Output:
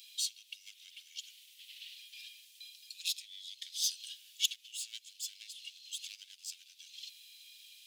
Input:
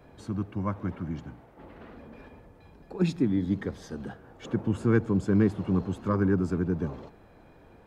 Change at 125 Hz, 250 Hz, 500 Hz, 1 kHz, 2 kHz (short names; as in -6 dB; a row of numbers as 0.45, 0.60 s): under -40 dB, under -40 dB, under -40 dB, under -40 dB, -10.5 dB